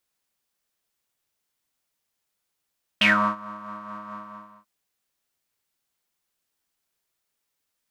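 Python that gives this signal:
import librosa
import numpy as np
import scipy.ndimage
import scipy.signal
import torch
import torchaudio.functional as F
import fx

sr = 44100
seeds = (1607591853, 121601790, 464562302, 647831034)

y = fx.sub_patch_tremolo(sr, seeds[0], note=56, wave='triangle', wave2='saw', interval_st=7, detune_cents=27, level2_db=-17.0, sub_db=-15.0, noise_db=-30.0, kind='bandpass', cutoff_hz=1100.0, q=11.0, env_oct=1.5, env_decay_s=0.16, env_sustain_pct=5, attack_ms=5.7, decay_s=0.34, sustain_db=-24.0, release_s=0.53, note_s=1.11, lfo_hz=4.6, tremolo_db=4.5)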